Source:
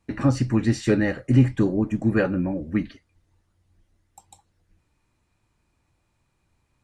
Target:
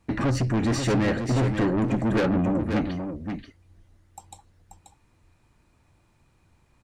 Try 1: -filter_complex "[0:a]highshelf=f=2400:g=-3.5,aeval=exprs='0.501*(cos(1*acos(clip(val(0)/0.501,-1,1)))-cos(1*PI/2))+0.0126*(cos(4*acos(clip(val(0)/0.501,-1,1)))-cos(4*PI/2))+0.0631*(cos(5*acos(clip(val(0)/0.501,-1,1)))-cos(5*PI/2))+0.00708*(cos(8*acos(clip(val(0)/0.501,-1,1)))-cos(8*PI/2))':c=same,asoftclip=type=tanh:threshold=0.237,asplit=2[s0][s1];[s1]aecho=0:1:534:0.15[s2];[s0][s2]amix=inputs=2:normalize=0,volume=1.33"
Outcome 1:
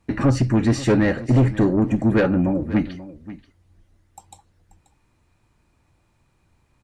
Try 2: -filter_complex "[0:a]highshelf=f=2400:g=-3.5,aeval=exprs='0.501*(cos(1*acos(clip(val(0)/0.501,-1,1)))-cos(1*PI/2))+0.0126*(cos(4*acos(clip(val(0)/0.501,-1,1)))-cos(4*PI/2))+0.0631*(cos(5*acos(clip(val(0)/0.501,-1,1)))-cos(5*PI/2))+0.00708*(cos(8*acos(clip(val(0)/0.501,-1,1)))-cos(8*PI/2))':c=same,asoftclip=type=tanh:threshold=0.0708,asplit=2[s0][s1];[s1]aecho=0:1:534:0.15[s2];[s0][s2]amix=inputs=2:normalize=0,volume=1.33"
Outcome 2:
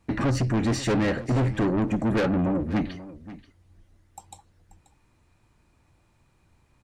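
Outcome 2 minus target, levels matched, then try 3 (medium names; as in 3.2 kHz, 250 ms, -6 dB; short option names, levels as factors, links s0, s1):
echo-to-direct -9.5 dB
-filter_complex "[0:a]highshelf=f=2400:g=-3.5,aeval=exprs='0.501*(cos(1*acos(clip(val(0)/0.501,-1,1)))-cos(1*PI/2))+0.0126*(cos(4*acos(clip(val(0)/0.501,-1,1)))-cos(4*PI/2))+0.0631*(cos(5*acos(clip(val(0)/0.501,-1,1)))-cos(5*PI/2))+0.00708*(cos(8*acos(clip(val(0)/0.501,-1,1)))-cos(8*PI/2))':c=same,asoftclip=type=tanh:threshold=0.0708,asplit=2[s0][s1];[s1]aecho=0:1:534:0.447[s2];[s0][s2]amix=inputs=2:normalize=0,volume=1.33"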